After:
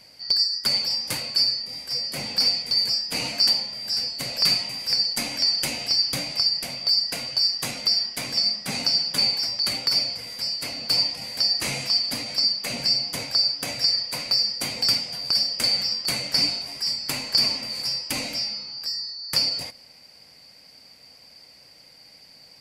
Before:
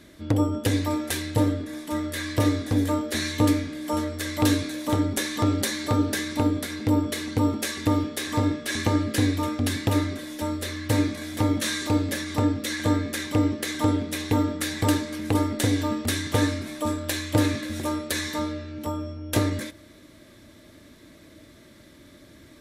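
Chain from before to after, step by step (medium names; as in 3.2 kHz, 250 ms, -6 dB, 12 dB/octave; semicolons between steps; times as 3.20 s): four frequency bands reordered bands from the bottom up 2341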